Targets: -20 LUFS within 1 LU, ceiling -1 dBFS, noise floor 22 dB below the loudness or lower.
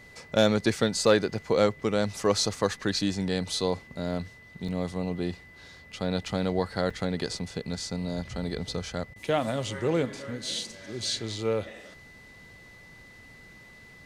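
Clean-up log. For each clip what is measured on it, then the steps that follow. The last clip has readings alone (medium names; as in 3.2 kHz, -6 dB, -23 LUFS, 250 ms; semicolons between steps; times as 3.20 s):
dropouts 2; longest dropout 4.9 ms; steady tone 2 kHz; tone level -50 dBFS; loudness -29.0 LUFS; peak level -9.0 dBFS; loudness target -20.0 LUFS
-> interpolate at 4.68/6.90 s, 4.9 ms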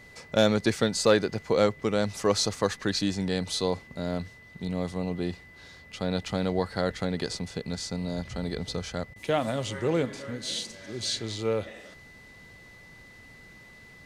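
dropouts 0; steady tone 2 kHz; tone level -50 dBFS
-> band-stop 2 kHz, Q 30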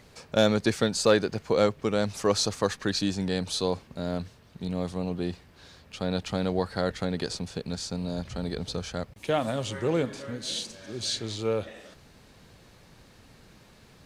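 steady tone not found; loudness -29.0 LUFS; peak level -8.5 dBFS; loudness target -20.0 LUFS
-> trim +9 dB; peak limiter -1 dBFS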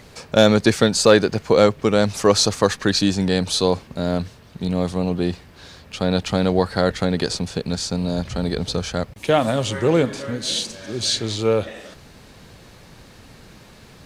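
loudness -20.0 LUFS; peak level -1.0 dBFS; noise floor -46 dBFS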